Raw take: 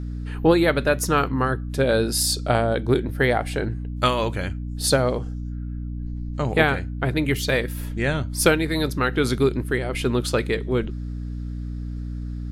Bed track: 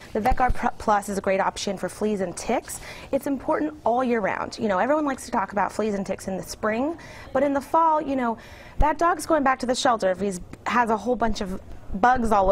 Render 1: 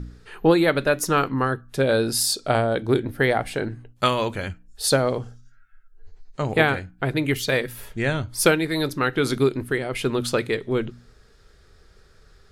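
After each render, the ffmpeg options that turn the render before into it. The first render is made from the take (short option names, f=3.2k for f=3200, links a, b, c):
-af "bandreject=f=60:t=h:w=4,bandreject=f=120:t=h:w=4,bandreject=f=180:t=h:w=4,bandreject=f=240:t=h:w=4,bandreject=f=300:t=h:w=4"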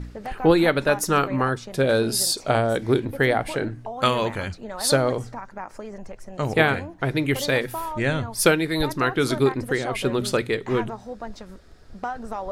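-filter_complex "[1:a]volume=-12dB[a];[0:a][a]amix=inputs=2:normalize=0"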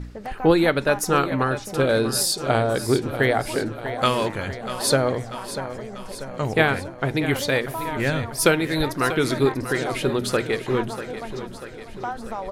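-af "aecho=1:1:641|1282|1923|2564|3205|3846|4487:0.251|0.148|0.0874|0.0516|0.0304|0.018|0.0106"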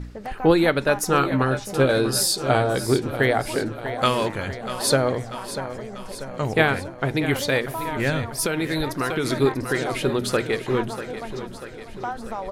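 -filter_complex "[0:a]asettb=1/sr,asplit=3[a][b][c];[a]atrim=end=1.194[d];[b]atrim=start=1.19:end=2.93,asetpts=PTS-STARTPTS,afade=t=in:d=0.004:c=qsin,afade=t=out:st=1.736:d=0.004:c=qsin,asplit=2[e][f];[f]adelay=15,volume=-7dB[g];[e][g]amix=inputs=2:normalize=0,atrim=end_sample=76734[h];[c]atrim=start=2.926[i];[d][h]acrossfade=d=0.004:c1=hsin:c2=qsin[j];[j][i]acrossfade=d=0.004:c1=qsin:c2=hsin,asettb=1/sr,asplit=3[k][l][m];[k]atrim=end=8.344[n];[l]atrim=start=8.34:end=9.26,asetpts=PTS-STARTPTS,afade=t=in:d=0.004:c=qsin,afade=t=out:st=0.916:d=0.004:c=qsin,acompressor=threshold=-19dB:ratio=6:attack=3.2:release=140:knee=1:detection=peak[o];[m]atrim=start=9.256[p];[n][o]acrossfade=d=0.004:c1=hsin:c2=qsin[q];[q][p]acrossfade=d=0.004:c1=qsin:c2=hsin"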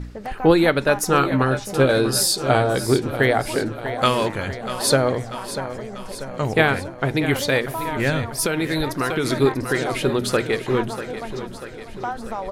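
-af "volume=2dB,alimiter=limit=-3dB:level=0:latency=1"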